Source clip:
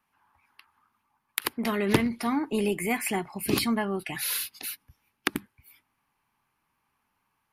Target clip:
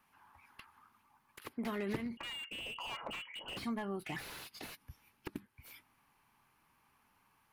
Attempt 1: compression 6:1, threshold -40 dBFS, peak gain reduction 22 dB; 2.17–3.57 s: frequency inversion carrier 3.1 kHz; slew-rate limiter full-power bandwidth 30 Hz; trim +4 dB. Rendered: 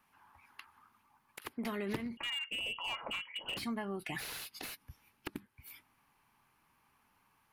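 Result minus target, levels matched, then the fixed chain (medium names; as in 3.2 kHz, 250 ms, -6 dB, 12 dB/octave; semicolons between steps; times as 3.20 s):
slew-rate limiter: distortion -5 dB
compression 6:1, threshold -40 dBFS, peak gain reduction 22 dB; 2.17–3.57 s: frequency inversion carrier 3.1 kHz; slew-rate limiter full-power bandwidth 12.5 Hz; trim +4 dB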